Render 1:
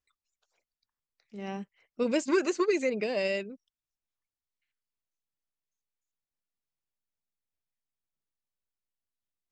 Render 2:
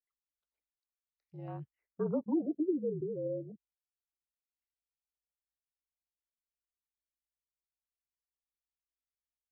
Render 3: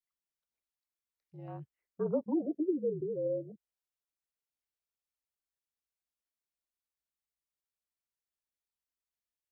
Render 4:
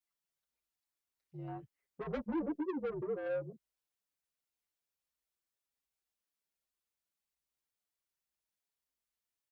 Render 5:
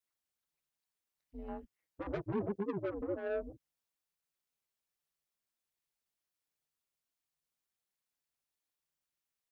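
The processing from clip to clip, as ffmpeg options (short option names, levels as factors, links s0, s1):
-af "afreqshift=-52,afwtdn=0.0112,afftfilt=real='re*lt(b*sr/1024,500*pow(7100/500,0.5+0.5*sin(2*PI*0.25*pts/sr)))':imag='im*lt(b*sr/1024,500*pow(7100/500,0.5+0.5*sin(2*PI*0.25*pts/sr)))':win_size=1024:overlap=0.75,volume=0.562"
-af "adynamicequalizer=threshold=0.00562:dfrequency=570:dqfactor=1.3:tfrequency=570:tqfactor=1.3:attack=5:release=100:ratio=0.375:range=3:mode=boostabove:tftype=bell,volume=0.794"
-filter_complex "[0:a]asoftclip=type=tanh:threshold=0.0178,asplit=2[s0][s1];[s1]adelay=6.3,afreqshift=-1.3[s2];[s0][s2]amix=inputs=2:normalize=1,volume=1.68"
-af "aeval=exprs='val(0)*sin(2*PI*100*n/s)':c=same,volume=1.41"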